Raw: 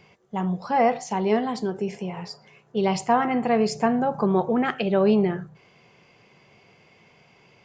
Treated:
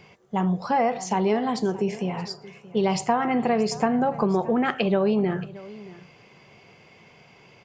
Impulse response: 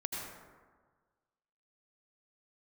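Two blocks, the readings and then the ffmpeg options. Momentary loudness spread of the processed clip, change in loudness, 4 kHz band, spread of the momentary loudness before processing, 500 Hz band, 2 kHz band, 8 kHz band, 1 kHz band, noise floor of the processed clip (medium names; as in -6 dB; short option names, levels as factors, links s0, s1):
11 LU, -0.5 dB, +1.5 dB, 12 LU, -1.0 dB, 0.0 dB, +2.5 dB, -0.5 dB, -54 dBFS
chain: -af "acompressor=threshold=0.0794:ratio=6,aecho=1:1:626:0.112,volume=1.5"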